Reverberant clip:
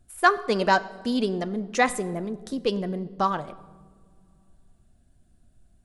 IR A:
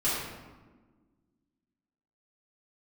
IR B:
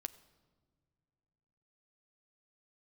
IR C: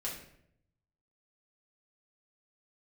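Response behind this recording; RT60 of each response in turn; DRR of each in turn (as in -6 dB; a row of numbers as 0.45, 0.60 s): B; 1.4 s, not exponential, 0.70 s; -12.0, 12.5, -5.0 dB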